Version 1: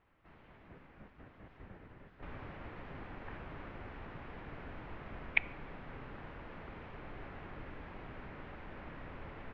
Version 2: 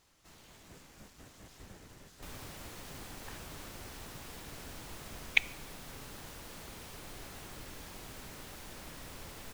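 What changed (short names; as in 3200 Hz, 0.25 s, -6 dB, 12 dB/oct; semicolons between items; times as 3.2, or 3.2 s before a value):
background: send -7.5 dB; master: remove LPF 2300 Hz 24 dB/oct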